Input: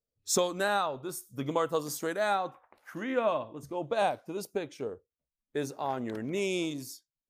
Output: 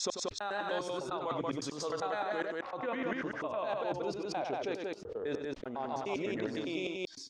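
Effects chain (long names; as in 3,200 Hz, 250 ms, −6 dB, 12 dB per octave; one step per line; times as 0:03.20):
slices reordered back to front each 101 ms, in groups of 4
bass and treble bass −7 dB, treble −4 dB
reversed playback
downward compressor 6 to 1, threshold −41 dBFS, peak gain reduction 16.5 dB
reversed playback
low-pass filter 5,600 Hz 24 dB per octave
loudspeakers that aren't time-aligned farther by 32 metres −9 dB, 63 metres −2 dB
background raised ahead of every attack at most 78 dB per second
level +6 dB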